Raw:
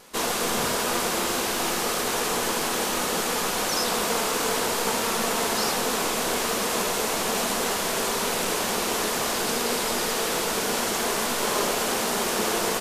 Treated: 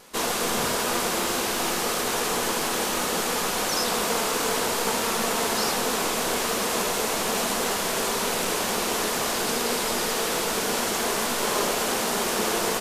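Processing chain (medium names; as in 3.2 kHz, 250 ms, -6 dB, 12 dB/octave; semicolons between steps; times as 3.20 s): modulated delay 545 ms, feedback 62%, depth 213 cents, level -23.5 dB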